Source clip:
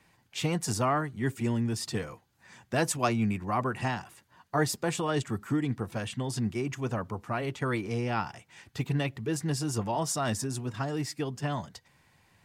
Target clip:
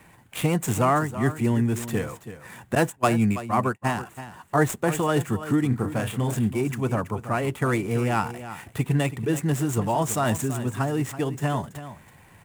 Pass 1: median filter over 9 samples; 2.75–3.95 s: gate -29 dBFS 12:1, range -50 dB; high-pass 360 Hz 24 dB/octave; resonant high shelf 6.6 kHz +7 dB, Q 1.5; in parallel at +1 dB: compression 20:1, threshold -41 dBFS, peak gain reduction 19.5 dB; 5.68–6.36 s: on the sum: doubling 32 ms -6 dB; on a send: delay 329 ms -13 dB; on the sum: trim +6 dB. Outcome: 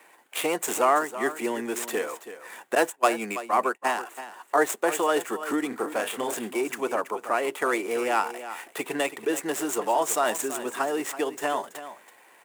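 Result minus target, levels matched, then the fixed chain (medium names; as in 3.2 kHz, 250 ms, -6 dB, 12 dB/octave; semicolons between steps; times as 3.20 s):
compression: peak gain reduction -12 dB; 500 Hz band +3.0 dB
median filter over 9 samples; 2.75–3.95 s: gate -29 dBFS 12:1, range -50 dB; resonant high shelf 6.6 kHz +7 dB, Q 1.5; in parallel at +1 dB: compression 20:1, threshold -52.5 dBFS, peak gain reduction 31.5 dB; 5.68–6.36 s: on the sum: doubling 32 ms -6 dB; on a send: delay 329 ms -13 dB; on the sum: trim +6 dB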